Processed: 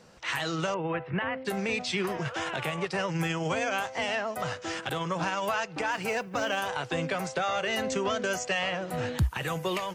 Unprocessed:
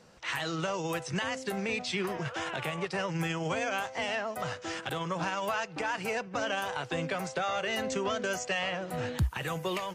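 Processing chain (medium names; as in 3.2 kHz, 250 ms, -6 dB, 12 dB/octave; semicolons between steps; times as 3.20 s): 0.74–1.45 s: inverse Chebyshev low-pass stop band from 6.1 kHz, stop band 50 dB; 5.91–6.60 s: modulation noise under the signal 33 dB; trim +2.5 dB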